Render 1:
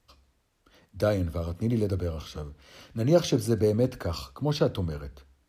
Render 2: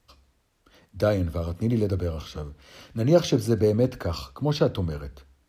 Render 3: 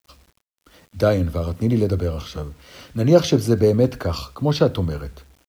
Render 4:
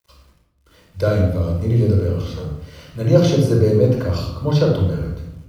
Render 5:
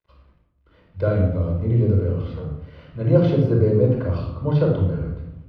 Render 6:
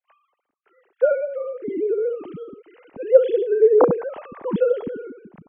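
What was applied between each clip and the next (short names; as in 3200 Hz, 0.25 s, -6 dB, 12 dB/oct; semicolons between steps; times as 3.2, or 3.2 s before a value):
dynamic EQ 9800 Hz, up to -5 dB, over -57 dBFS, Q 0.96; gain +2.5 dB
bit-crush 10-bit; gain +5 dB
shoebox room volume 2700 m³, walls furnished, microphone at 5 m; gain -5.5 dB
air absorption 420 m; gain -2 dB
sine-wave speech; gain -1 dB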